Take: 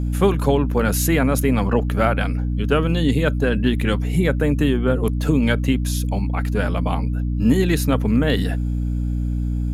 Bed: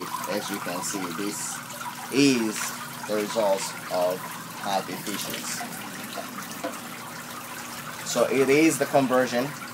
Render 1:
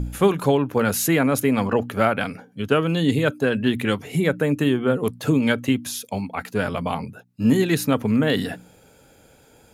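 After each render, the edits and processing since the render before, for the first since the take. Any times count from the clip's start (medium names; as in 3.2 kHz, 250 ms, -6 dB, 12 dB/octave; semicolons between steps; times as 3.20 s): de-hum 60 Hz, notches 5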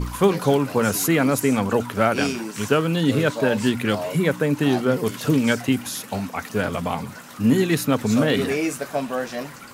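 add bed -4.5 dB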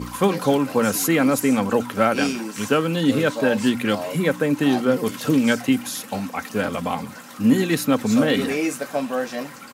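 high-pass 110 Hz; comb 3.8 ms, depth 32%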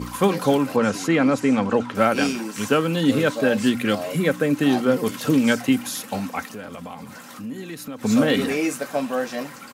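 0.76–1.95 s: distance through air 92 m; 3.35–4.70 s: band-stop 930 Hz, Q 5.1; 6.45–8.03 s: compression 3:1, threshold -35 dBFS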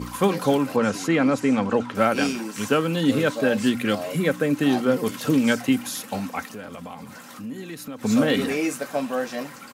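trim -1.5 dB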